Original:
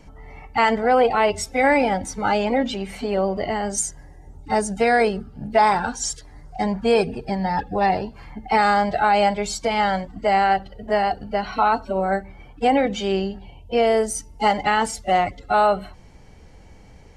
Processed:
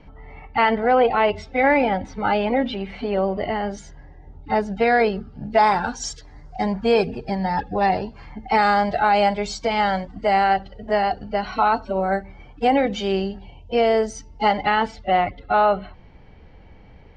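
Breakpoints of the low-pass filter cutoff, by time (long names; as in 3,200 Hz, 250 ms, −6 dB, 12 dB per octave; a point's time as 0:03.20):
low-pass filter 24 dB per octave
0:04.67 3,900 Hz
0:05.61 6,200 Hz
0:13.83 6,200 Hz
0:15.12 3,700 Hz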